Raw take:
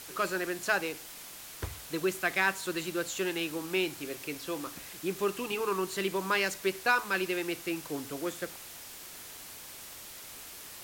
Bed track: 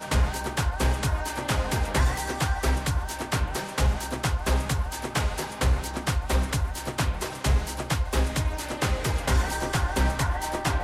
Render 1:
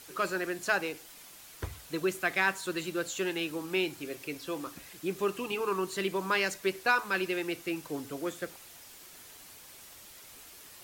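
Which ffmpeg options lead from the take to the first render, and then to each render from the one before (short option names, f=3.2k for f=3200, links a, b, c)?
-af "afftdn=nr=6:nf=-47"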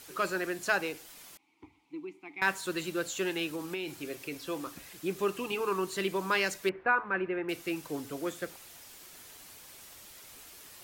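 -filter_complex "[0:a]asettb=1/sr,asplit=3[a][b][c];[a]atrim=end=1.374[d];[b]atrim=start=1.37:end=2.42,asetpts=PTS-STARTPTS,afade=t=in:d=0.004:c=qsin,afade=t=out:st=1.046:d=0.004:c=qsin,asplit=3[e][f][g];[e]bandpass=f=300:t=q:w=8,volume=0dB[h];[f]bandpass=f=870:t=q:w=8,volume=-6dB[i];[g]bandpass=f=2.24k:t=q:w=8,volume=-9dB[j];[h][i][j]amix=inputs=3:normalize=0[k];[c]atrim=start=2.416[l];[d][k]acrossfade=d=0.004:c1=hsin:c2=qsin[m];[m][l]acrossfade=d=0.004:c1=qsin:c2=hsin,asettb=1/sr,asplit=3[n][o][p];[n]atrim=end=3.514[q];[o]atrim=start=3.51:end=4.42,asetpts=PTS-STARTPTS,afade=t=in:d=0.004:c=qsin,afade=t=out:st=0.906:d=0.004:c=qsin,acompressor=threshold=-31dB:ratio=10:attack=3.2:release=140:knee=1:detection=peak[r];[p]atrim=start=4.416[s];[q][r]acrossfade=d=0.004:c1=hsin:c2=qsin[t];[t][s]acrossfade=d=0.004:c1=qsin:c2=hsin,asettb=1/sr,asplit=3[u][v][w];[u]atrim=end=6.694[x];[v]atrim=start=6.69:end=7.49,asetpts=PTS-STARTPTS,afade=t=in:d=0.004:c=qsin,afade=t=out:st=0.796:d=0.004:c=qsin,lowpass=f=2k:w=0.5412,lowpass=f=2k:w=1.3066[y];[w]atrim=start=7.486[z];[x][y]acrossfade=d=0.004:c1=hsin:c2=qsin[aa];[aa][z]acrossfade=d=0.004:c1=qsin:c2=hsin"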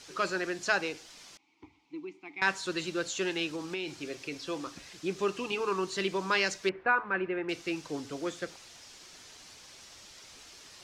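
-af "lowpass=f=5.7k:t=q:w=1.7"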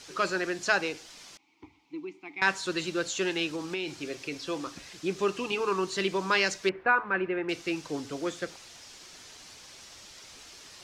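-af "volume=2.5dB"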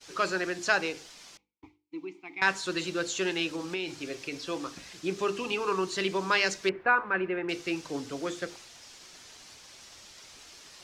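-af "agate=range=-33dB:threshold=-47dB:ratio=3:detection=peak,bandreject=f=50:t=h:w=6,bandreject=f=100:t=h:w=6,bandreject=f=150:t=h:w=6,bandreject=f=200:t=h:w=6,bandreject=f=250:t=h:w=6,bandreject=f=300:t=h:w=6,bandreject=f=350:t=h:w=6,bandreject=f=400:t=h:w=6,bandreject=f=450:t=h:w=6,bandreject=f=500:t=h:w=6"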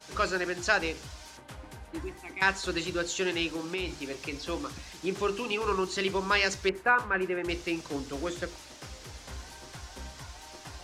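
-filter_complex "[1:a]volume=-20dB[a];[0:a][a]amix=inputs=2:normalize=0"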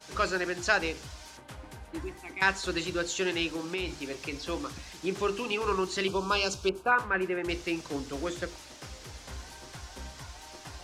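-filter_complex "[0:a]asettb=1/sr,asplit=3[a][b][c];[a]atrim=end=6.074[d];[b]atrim=start=6.07:end=6.92,asetpts=PTS-STARTPTS,afade=t=in:d=0.004:c=qsin,afade=t=out:st=0.846:d=0.004:c=qsin,asuperstop=centerf=1900:order=4:qfactor=1.8[e];[c]atrim=start=6.916[f];[d][e]acrossfade=d=0.004:c1=hsin:c2=qsin[g];[g][f]acrossfade=d=0.004:c1=qsin:c2=hsin"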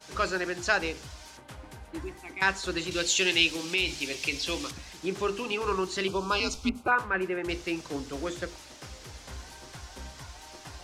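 -filter_complex "[0:a]asettb=1/sr,asplit=3[a][b][c];[a]atrim=end=2.914[d];[b]atrim=start=2.91:end=4.71,asetpts=PTS-STARTPTS,afade=t=in:d=0.004:c=qsin,afade=t=out:st=1.796:d=0.004:c=qsin,highshelf=f=1.9k:t=q:w=1.5:g=8[e];[c]atrim=start=4.706[f];[d][e]acrossfade=d=0.004:c1=hsin:c2=qsin[g];[g][f]acrossfade=d=0.004:c1=qsin:c2=hsin,asettb=1/sr,asplit=3[h][i][j];[h]atrim=end=6.404[k];[i]atrim=start=6.4:end=6.88,asetpts=PTS-STARTPTS,afade=t=in:d=0.004:c=qsin,afade=t=out:st=0.476:d=0.004:c=qsin,afreqshift=-140[l];[j]atrim=start=6.876[m];[k][l]acrossfade=d=0.004:c1=hsin:c2=qsin[n];[n][m]acrossfade=d=0.004:c1=qsin:c2=hsin"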